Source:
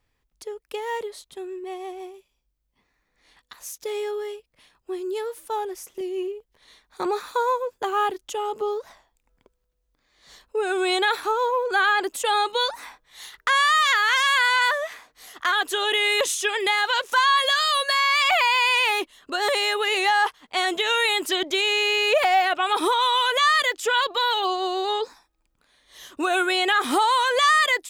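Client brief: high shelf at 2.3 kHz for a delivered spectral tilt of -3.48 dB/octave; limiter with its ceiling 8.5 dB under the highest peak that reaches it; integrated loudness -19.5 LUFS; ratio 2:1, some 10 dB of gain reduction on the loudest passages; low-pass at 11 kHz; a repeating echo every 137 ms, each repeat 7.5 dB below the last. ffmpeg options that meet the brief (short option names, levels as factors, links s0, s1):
-af "lowpass=11000,highshelf=f=2300:g=3,acompressor=threshold=0.0224:ratio=2,alimiter=limit=0.0708:level=0:latency=1,aecho=1:1:137|274|411|548|685:0.422|0.177|0.0744|0.0312|0.0131,volume=3.55"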